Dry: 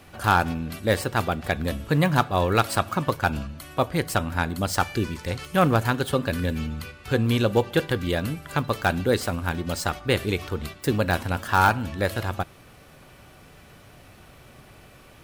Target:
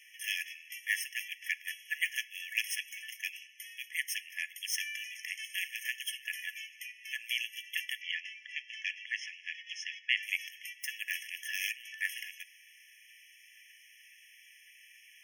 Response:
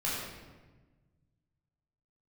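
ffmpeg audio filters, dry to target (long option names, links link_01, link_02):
-filter_complex "[0:a]asettb=1/sr,asplit=3[link_01][link_02][link_03];[link_01]atrim=end=8.014[link_04];[link_02]atrim=start=8.01:end=10.23,asetpts=PTS-STARTPTS,afade=type=in:duration=0.004:curve=qsin,afade=type=out:start_time=2.216:duration=0.004:curve=qsin,lowpass=frequency=5100:width=0.5412,lowpass=frequency=5100:width=1.3066[link_05];[link_03]atrim=start=10.226[link_06];[link_04][link_05]acrossfade=duration=0.004:curve1=hsin:curve2=qsin[link_07];[link_07][link_06]acrossfade=duration=0.004:curve1=qsin:curve2=hsin,afftfilt=real='re*eq(mod(floor(b*sr/1024/1700),2),1)':imag='im*eq(mod(floor(b*sr/1024/1700),2),1)':win_size=1024:overlap=0.75"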